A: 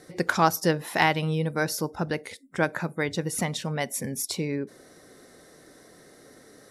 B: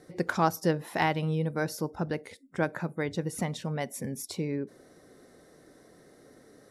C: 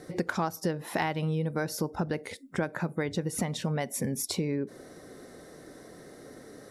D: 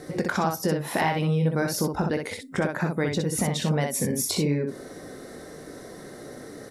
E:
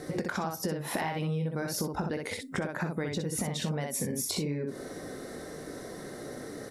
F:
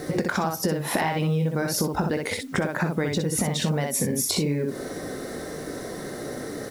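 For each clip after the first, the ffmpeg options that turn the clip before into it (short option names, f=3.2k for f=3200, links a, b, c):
-af "tiltshelf=f=1.2k:g=3.5,volume=-5.5dB"
-af "acompressor=threshold=-34dB:ratio=6,volume=7.5dB"
-filter_complex "[0:a]asplit=2[a][b];[b]alimiter=limit=-24dB:level=0:latency=1:release=25,volume=-1dB[c];[a][c]amix=inputs=2:normalize=0,aecho=1:1:20|62:0.316|0.596"
-af "acompressor=threshold=-29dB:ratio=6"
-af "acrusher=bits=9:mix=0:aa=0.000001,volume=7.5dB"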